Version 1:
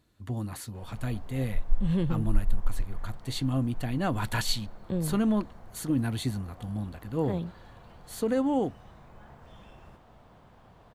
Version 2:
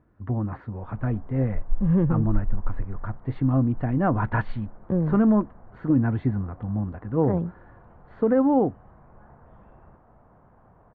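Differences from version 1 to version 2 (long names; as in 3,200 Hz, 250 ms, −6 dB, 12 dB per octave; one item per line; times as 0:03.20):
speech +6.5 dB
master: add low-pass filter 1,600 Hz 24 dB per octave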